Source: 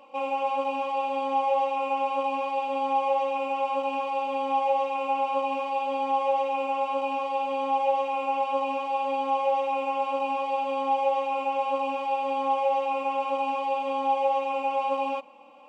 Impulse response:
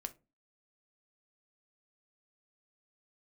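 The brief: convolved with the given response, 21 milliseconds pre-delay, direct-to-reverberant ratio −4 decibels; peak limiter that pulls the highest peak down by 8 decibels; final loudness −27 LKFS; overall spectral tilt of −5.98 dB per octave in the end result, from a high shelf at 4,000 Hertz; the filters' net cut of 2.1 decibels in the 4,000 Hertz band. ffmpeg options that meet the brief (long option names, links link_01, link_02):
-filter_complex "[0:a]highshelf=frequency=4000:gain=6.5,equalizer=frequency=4000:width_type=o:gain=-7,alimiter=limit=-22.5dB:level=0:latency=1,asplit=2[link_01][link_02];[1:a]atrim=start_sample=2205,adelay=21[link_03];[link_02][link_03]afir=irnorm=-1:irlink=0,volume=6.5dB[link_04];[link_01][link_04]amix=inputs=2:normalize=0,volume=-2dB"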